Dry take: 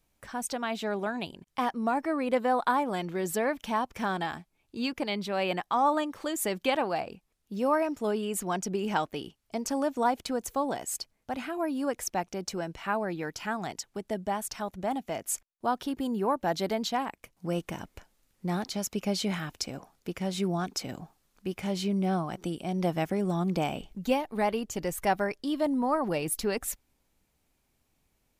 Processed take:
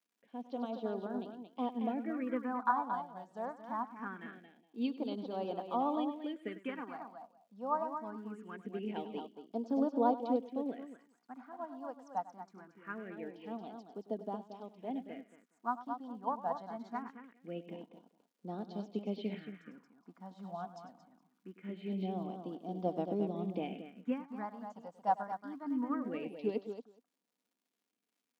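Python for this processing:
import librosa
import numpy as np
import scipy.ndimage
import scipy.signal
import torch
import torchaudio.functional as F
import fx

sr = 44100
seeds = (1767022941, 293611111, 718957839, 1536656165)

y = fx.peak_eq(x, sr, hz=3200.0, db=4.0, octaves=0.25)
y = fx.echo_multitap(y, sr, ms=(99, 227, 418), db=(-11.0, -6.0, -19.5))
y = fx.phaser_stages(y, sr, stages=4, low_hz=370.0, high_hz=2100.0, hz=0.23, feedback_pct=25)
y = fx.spacing_loss(y, sr, db_at_10k=39)
y = fx.dmg_crackle(y, sr, seeds[0], per_s=270.0, level_db=-58.0)
y = scipy.signal.sosfilt(scipy.signal.butter(4, 230.0, 'highpass', fs=sr, output='sos'), y)
y = y + 0.33 * np.pad(y, (int(4.2 * sr / 1000.0), 0))[:len(y)]
y = fx.upward_expand(y, sr, threshold_db=-50.0, expansion=1.5)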